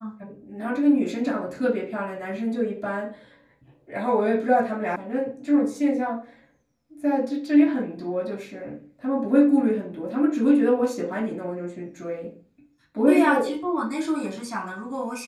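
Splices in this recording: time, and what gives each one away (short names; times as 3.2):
4.96 sound cut off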